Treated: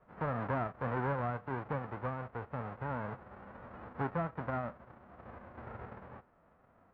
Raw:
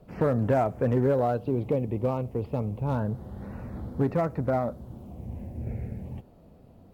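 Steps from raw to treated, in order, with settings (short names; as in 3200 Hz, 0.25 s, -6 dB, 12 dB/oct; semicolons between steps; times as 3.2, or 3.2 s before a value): spectral whitening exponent 0.1; LPF 1400 Hz 24 dB/oct; gain -4.5 dB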